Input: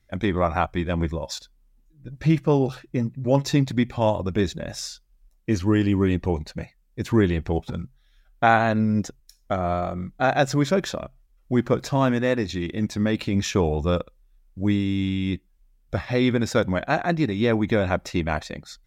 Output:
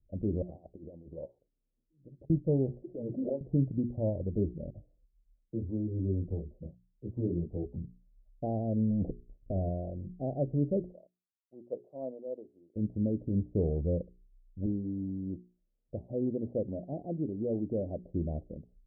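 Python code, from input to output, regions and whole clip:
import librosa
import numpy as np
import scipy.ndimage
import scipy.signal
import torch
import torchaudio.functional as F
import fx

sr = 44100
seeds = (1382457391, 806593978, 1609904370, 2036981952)

y = fx.chain(x, sr, fx.over_compress(threshold_db=-28.0, ratio=-0.5),
    fx.highpass(hz=640.0, slope=6), at=(0.42, 2.3))
y = fx.chain(y, sr, fx.highpass(hz=510.0, slope=12),
    fx.env_flanger(rest_ms=6.1, full_db=-23.5),
    fx.pre_swell(db_per_s=21.0), at=(2.82, 3.41))
y = fx.chain(y, sr, fx.dispersion(late='lows', ms=50.0, hz=1500.0),
    fx.detune_double(cents=11), at=(4.7, 7.76))
y = fx.chain(y, sr, fx.over_compress(threshold_db=-28.0, ratio=-1.0),
    fx.leveller(passes=3), at=(8.9, 9.69))
y = fx.chain(y, sr, fx.highpass(hz=680.0, slope=12),
    fx.band_widen(depth_pct=100), at=(10.92, 12.76))
y = fx.chain(y, sr, fx.cvsd(bps=32000),
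    fx.highpass(hz=220.0, slope=6), at=(14.66, 18.03))
y = scipy.signal.sosfilt(scipy.signal.butter(8, 610.0, 'lowpass', fs=sr, output='sos'), y)
y = fx.low_shelf(y, sr, hz=140.0, db=6.0)
y = fx.hum_notches(y, sr, base_hz=60, count=7)
y = y * 10.0 ** (-9.0 / 20.0)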